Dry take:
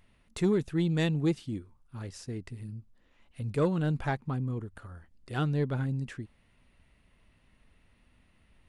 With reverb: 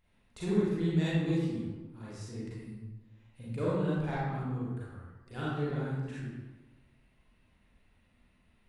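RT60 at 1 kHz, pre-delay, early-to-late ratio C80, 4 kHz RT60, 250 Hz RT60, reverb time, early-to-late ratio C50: 1.2 s, 33 ms, 0.5 dB, 0.80 s, 1.3 s, 1.2 s, -3.5 dB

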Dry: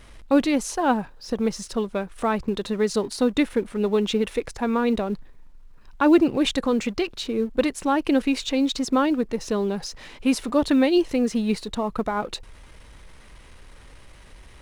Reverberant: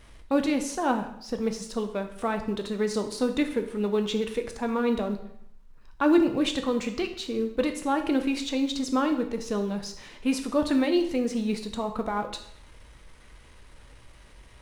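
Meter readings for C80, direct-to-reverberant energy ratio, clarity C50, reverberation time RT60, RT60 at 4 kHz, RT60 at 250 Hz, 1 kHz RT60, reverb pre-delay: 13.0 dB, 5.5 dB, 10.0 dB, 0.70 s, 0.65 s, 0.70 s, 0.70 s, 4 ms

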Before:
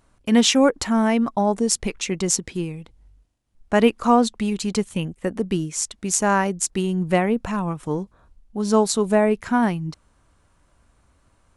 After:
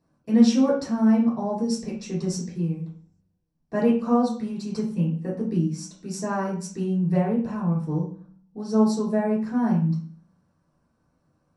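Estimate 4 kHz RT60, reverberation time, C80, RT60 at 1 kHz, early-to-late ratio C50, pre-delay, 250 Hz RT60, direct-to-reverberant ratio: 0.40 s, 0.45 s, 10.0 dB, 0.40 s, 5.5 dB, 3 ms, 0.80 s, -7.0 dB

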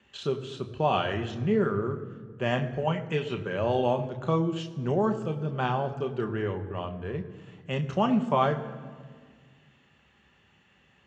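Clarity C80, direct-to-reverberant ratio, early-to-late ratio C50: 13.0 dB, 4.5 dB, 12.0 dB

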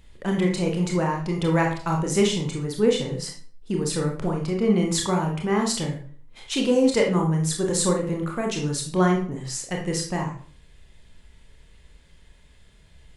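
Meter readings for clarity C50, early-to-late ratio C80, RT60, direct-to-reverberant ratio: 6.0 dB, 11.0 dB, 0.45 s, 0.5 dB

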